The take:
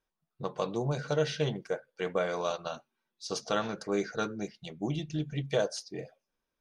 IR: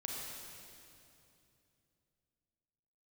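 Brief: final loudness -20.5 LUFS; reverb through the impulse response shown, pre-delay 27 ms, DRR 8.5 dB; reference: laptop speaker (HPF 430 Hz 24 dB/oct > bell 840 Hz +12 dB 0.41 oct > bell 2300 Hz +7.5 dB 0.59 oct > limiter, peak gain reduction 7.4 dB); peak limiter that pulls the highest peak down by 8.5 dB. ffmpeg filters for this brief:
-filter_complex "[0:a]alimiter=limit=-24dB:level=0:latency=1,asplit=2[a][b];[1:a]atrim=start_sample=2205,adelay=27[c];[b][c]afir=irnorm=-1:irlink=0,volume=-9dB[d];[a][d]amix=inputs=2:normalize=0,highpass=f=430:w=0.5412,highpass=f=430:w=1.3066,equalizer=f=840:t=o:w=0.41:g=12,equalizer=f=2.3k:t=o:w=0.59:g=7.5,volume=18dB,alimiter=limit=-8dB:level=0:latency=1"

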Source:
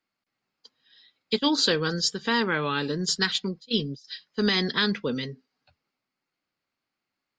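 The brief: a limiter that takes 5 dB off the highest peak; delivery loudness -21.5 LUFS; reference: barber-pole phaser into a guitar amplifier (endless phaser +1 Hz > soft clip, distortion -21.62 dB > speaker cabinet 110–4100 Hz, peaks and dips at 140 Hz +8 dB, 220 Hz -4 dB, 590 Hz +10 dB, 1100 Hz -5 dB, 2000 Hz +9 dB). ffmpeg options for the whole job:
-filter_complex "[0:a]alimiter=limit=-14.5dB:level=0:latency=1,asplit=2[a][b];[b]afreqshift=1[c];[a][c]amix=inputs=2:normalize=1,asoftclip=threshold=-20dB,highpass=110,equalizer=f=140:t=q:w=4:g=8,equalizer=f=220:t=q:w=4:g=-4,equalizer=f=590:t=q:w=4:g=10,equalizer=f=1.1k:t=q:w=4:g=-5,equalizer=f=2k:t=q:w=4:g=9,lowpass=f=4.1k:w=0.5412,lowpass=f=4.1k:w=1.3066,volume=10dB"

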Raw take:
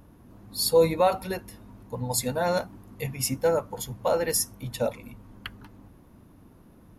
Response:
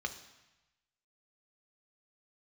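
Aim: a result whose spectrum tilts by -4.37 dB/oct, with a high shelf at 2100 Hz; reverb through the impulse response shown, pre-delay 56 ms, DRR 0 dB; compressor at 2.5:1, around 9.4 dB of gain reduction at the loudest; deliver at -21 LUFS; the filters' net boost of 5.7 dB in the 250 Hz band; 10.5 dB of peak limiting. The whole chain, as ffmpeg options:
-filter_complex "[0:a]equalizer=f=250:t=o:g=7.5,highshelf=f=2.1k:g=8,acompressor=threshold=-27dB:ratio=2.5,alimiter=limit=-23dB:level=0:latency=1,asplit=2[a][b];[1:a]atrim=start_sample=2205,adelay=56[c];[b][c]afir=irnorm=-1:irlink=0,volume=-2.5dB[d];[a][d]amix=inputs=2:normalize=0,volume=11.5dB"

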